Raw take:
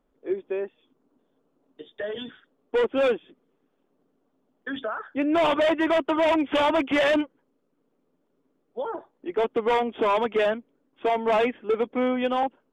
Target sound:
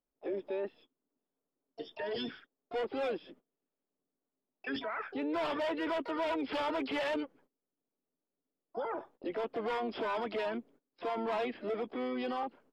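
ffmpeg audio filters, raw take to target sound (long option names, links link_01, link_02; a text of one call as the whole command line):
ffmpeg -i in.wav -filter_complex "[0:a]agate=range=-21dB:threshold=-54dB:ratio=16:detection=peak,acompressor=threshold=-25dB:ratio=8,alimiter=level_in=6.5dB:limit=-24dB:level=0:latency=1:release=11,volume=-6.5dB,asplit=2[link_01][link_02];[link_02]asetrate=66075,aresample=44100,atempo=0.66742,volume=-8dB[link_03];[link_01][link_03]amix=inputs=2:normalize=0" out.wav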